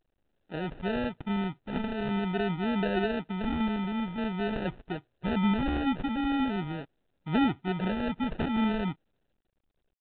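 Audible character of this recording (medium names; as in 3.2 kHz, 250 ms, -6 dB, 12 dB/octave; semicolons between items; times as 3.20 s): a buzz of ramps at a fixed pitch in blocks of 8 samples; phasing stages 4, 0.45 Hz, lowest notch 550–1100 Hz; aliases and images of a low sample rate 1.1 kHz, jitter 0%; µ-law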